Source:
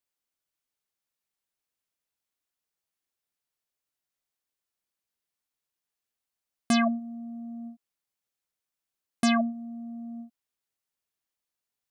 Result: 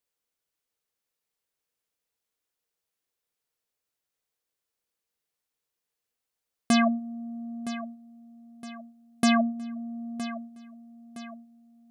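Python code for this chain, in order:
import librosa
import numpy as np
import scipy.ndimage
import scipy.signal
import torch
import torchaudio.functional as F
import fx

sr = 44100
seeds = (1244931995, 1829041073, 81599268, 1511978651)

p1 = fx.peak_eq(x, sr, hz=470.0, db=8.5, octaves=0.24)
p2 = p1 + fx.echo_feedback(p1, sr, ms=965, feedback_pct=45, wet_db=-13.5, dry=0)
y = p2 * librosa.db_to_amplitude(1.5)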